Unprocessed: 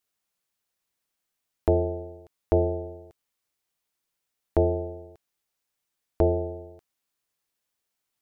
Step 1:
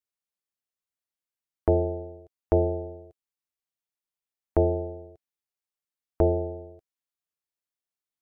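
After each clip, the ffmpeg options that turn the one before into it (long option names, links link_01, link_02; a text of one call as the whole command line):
ffmpeg -i in.wav -af "afftdn=noise_reduction=13:noise_floor=-49" out.wav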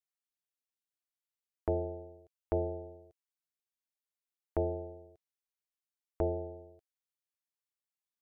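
ffmpeg -i in.wav -af "tiltshelf=frequency=970:gain=-3,volume=-8dB" out.wav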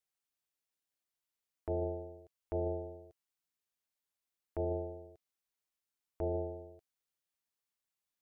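ffmpeg -i in.wav -af "alimiter=level_in=5.5dB:limit=-24dB:level=0:latency=1:release=24,volume=-5.5dB,volume=2.5dB" out.wav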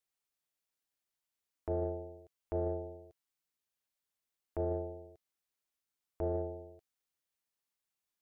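ffmpeg -i in.wav -af "aeval=exprs='0.0473*(cos(1*acos(clip(val(0)/0.0473,-1,1)))-cos(1*PI/2))+0.0015*(cos(3*acos(clip(val(0)/0.0473,-1,1)))-cos(3*PI/2))':channel_layout=same,volume=1dB" out.wav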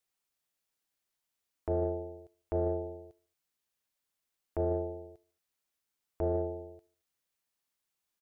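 ffmpeg -i in.wav -af "aecho=1:1:75|150|225:0.0708|0.0333|0.0156,volume=3.5dB" out.wav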